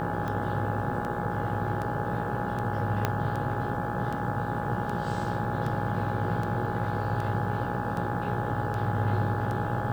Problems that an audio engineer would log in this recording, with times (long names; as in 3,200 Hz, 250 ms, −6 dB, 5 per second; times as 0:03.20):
mains buzz 60 Hz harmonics 29 −35 dBFS
scratch tick 78 rpm −22 dBFS
whistle 830 Hz −34 dBFS
0:03.05: click −11 dBFS